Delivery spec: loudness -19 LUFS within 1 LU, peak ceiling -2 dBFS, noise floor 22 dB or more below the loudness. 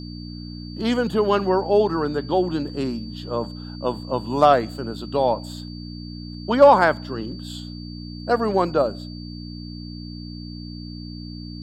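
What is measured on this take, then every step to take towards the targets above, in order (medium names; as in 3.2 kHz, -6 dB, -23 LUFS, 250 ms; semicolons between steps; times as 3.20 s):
hum 60 Hz; highest harmonic 300 Hz; hum level -32 dBFS; steady tone 4.6 kHz; tone level -42 dBFS; loudness -21.5 LUFS; peak level -3.0 dBFS; loudness target -19.0 LUFS
-> de-hum 60 Hz, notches 5; band-stop 4.6 kHz, Q 30; trim +2.5 dB; peak limiter -2 dBFS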